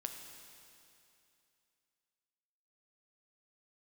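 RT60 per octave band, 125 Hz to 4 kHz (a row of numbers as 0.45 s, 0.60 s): 2.7 s, 2.7 s, 2.7 s, 2.7 s, 2.7 s, 2.7 s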